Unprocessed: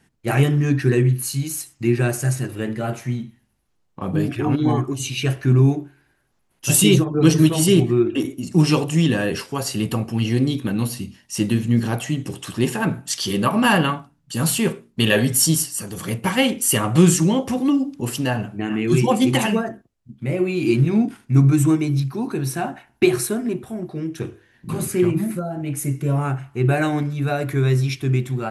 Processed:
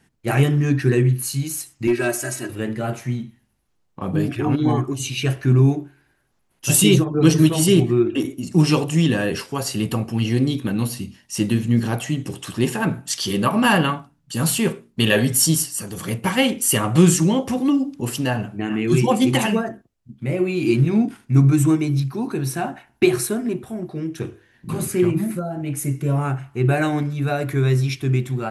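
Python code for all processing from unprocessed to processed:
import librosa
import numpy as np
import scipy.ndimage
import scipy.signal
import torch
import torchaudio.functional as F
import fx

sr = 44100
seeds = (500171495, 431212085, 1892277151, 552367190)

y = fx.chain(x, sr, fx.highpass(hz=350.0, slope=6),
    fx.overload_stage(gain_db=15.0),
    fx.comb(ms=3.1, depth=0.87), at=(1.87, 2.5))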